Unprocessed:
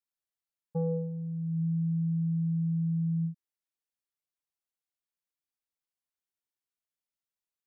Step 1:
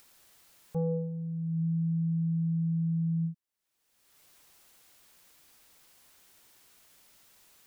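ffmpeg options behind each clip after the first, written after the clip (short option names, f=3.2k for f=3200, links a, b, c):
-af "acompressor=mode=upward:threshold=-36dB:ratio=2.5"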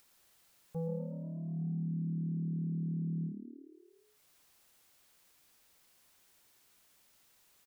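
-filter_complex "[0:a]asplit=8[a][b][c][d][e][f][g][h];[b]adelay=120,afreqshift=37,volume=-10dB[i];[c]adelay=240,afreqshift=74,volume=-14.3dB[j];[d]adelay=360,afreqshift=111,volume=-18.6dB[k];[e]adelay=480,afreqshift=148,volume=-22.9dB[l];[f]adelay=600,afreqshift=185,volume=-27.2dB[m];[g]adelay=720,afreqshift=222,volume=-31.5dB[n];[h]adelay=840,afreqshift=259,volume=-35.8dB[o];[a][i][j][k][l][m][n][o]amix=inputs=8:normalize=0,volume=-7dB"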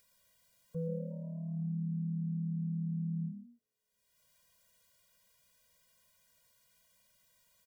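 -af "afftfilt=real='re*eq(mod(floor(b*sr/1024/230),2),0)':imag='im*eq(mod(floor(b*sr/1024/230),2),0)':win_size=1024:overlap=0.75"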